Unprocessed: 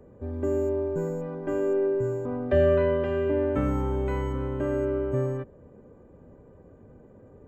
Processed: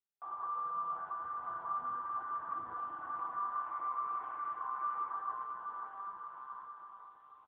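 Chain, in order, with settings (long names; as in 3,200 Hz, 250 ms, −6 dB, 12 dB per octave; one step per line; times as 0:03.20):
gate on every frequency bin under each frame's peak −25 dB weak
0:00.76–0:03.25: low-shelf EQ 150 Hz +6.5 dB
comb filter 2.7 ms, depth 62%
dynamic equaliser 740 Hz, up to −3 dB, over −59 dBFS, Q 3.1
downward compressor 12 to 1, threshold −50 dBFS, peak gain reduction 15 dB
bit reduction 9 bits
transistor ladder low-pass 1,200 Hz, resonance 85%
bouncing-ball delay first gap 680 ms, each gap 0.8×, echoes 5
convolution reverb RT60 0.85 s, pre-delay 6 ms, DRR 3.5 dB
level +12.5 dB
AMR narrowband 7.95 kbit/s 8,000 Hz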